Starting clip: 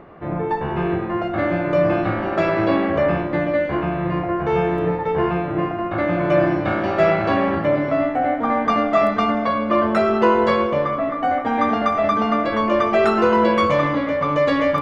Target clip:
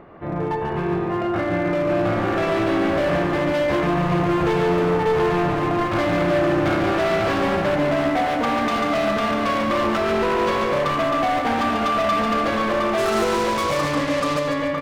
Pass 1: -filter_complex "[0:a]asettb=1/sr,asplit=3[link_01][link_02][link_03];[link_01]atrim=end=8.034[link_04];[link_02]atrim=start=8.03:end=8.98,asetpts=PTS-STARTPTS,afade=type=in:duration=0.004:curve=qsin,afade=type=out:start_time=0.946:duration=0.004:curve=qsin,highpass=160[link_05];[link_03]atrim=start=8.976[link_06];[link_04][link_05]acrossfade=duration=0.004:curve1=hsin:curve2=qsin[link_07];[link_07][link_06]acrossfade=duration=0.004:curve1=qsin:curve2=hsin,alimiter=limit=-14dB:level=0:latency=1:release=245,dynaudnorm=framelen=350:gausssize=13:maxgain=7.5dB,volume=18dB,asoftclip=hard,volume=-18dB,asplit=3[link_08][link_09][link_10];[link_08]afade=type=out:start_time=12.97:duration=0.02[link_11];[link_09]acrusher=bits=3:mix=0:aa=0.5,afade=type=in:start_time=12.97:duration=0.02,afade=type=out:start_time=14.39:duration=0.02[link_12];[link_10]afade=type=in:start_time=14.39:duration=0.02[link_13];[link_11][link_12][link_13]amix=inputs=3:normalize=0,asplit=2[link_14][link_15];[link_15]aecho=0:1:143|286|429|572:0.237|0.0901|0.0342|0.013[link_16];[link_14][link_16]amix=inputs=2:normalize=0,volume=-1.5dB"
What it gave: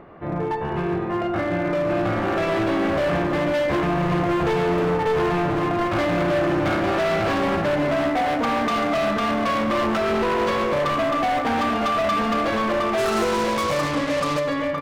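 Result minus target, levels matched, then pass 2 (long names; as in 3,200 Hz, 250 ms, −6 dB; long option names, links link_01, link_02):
echo-to-direct −7.5 dB
-filter_complex "[0:a]asettb=1/sr,asplit=3[link_01][link_02][link_03];[link_01]atrim=end=8.034[link_04];[link_02]atrim=start=8.03:end=8.98,asetpts=PTS-STARTPTS,afade=type=in:duration=0.004:curve=qsin,afade=type=out:start_time=0.946:duration=0.004:curve=qsin,highpass=160[link_05];[link_03]atrim=start=8.976[link_06];[link_04][link_05]acrossfade=duration=0.004:curve1=hsin:curve2=qsin[link_07];[link_07][link_06]acrossfade=duration=0.004:curve1=qsin:curve2=hsin,alimiter=limit=-14dB:level=0:latency=1:release=245,dynaudnorm=framelen=350:gausssize=13:maxgain=7.5dB,volume=18dB,asoftclip=hard,volume=-18dB,asplit=3[link_08][link_09][link_10];[link_08]afade=type=out:start_time=12.97:duration=0.02[link_11];[link_09]acrusher=bits=3:mix=0:aa=0.5,afade=type=in:start_time=12.97:duration=0.02,afade=type=out:start_time=14.39:duration=0.02[link_12];[link_10]afade=type=in:start_time=14.39:duration=0.02[link_13];[link_11][link_12][link_13]amix=inputs=3:normalize=0,asplit=2[link_14][link_15];[link_15]aecho=0:1:143|286|429|572|715:0.562|0.214|0.0812|0.0309|0.0117[link_16];[link_14][link_16]amix=inputs=2:normalize=0,volume=-1.5dB"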